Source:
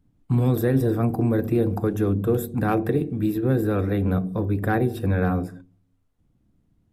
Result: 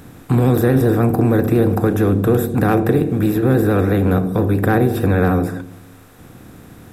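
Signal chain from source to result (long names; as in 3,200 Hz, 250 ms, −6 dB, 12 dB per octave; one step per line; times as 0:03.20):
compressor on every frequency bin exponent 0.6
pitch vibrato 13 Hz 43 cents
one half of a high-frequency compander encoder only
level +4 dB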